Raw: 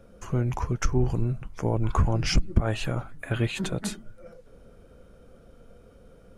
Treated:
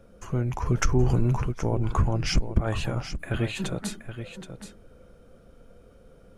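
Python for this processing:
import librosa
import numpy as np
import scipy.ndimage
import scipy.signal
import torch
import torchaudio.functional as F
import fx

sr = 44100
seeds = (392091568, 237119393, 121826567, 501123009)

y = x + 10.0 ** (-10.5 / 20.0) * np.pad(x, (int(774 * sr / 1000.0), 0))[:len(x)]
y = fx.env_flatten(y, sr, amount_pct=50, at=(0.65, 1.51), fade=0.02)
y = y * librosa.db_to_amplitude(-1.0)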